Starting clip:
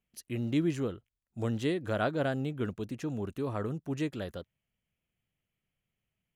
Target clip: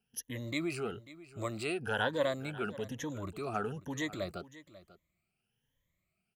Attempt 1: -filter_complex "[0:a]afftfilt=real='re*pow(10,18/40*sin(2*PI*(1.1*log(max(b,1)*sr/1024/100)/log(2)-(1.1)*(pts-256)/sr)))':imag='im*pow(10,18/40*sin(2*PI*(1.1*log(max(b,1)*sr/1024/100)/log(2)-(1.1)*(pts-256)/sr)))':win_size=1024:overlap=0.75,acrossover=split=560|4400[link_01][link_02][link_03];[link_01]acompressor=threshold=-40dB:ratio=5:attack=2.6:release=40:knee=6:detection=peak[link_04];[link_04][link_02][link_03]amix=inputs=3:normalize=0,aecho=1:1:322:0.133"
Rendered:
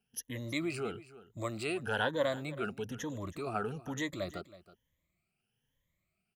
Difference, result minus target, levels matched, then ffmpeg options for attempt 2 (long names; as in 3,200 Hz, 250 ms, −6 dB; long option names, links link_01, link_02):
echo 220 ms early
-filter_complex "[0:a]afftfilt=real='re*pow(10,18/40*sin(2*PI*(1.1*log(max(b,1)*sr/1024/100)/log(2)-(1.1)*(pts-256)/sr)))':imag='im*pow(10,18/40*sin(2*PI*(1.1*log(max(b,1)*sr/1024/100)/log(2)-(1.1)*(pts-256)/sr)))':win_size=1024:overlap=0.75,acrossover=split=560|4400[link_01][link_02][link_03];[link_01]acompressor=threshold=-40dB:ratio=5:attack=2.6:release=40:knee=6:detection=peak[link_04];[link_04][link_02][link_03]amix=inputs=3:normalize=0,aecho=1:1:542:0.133"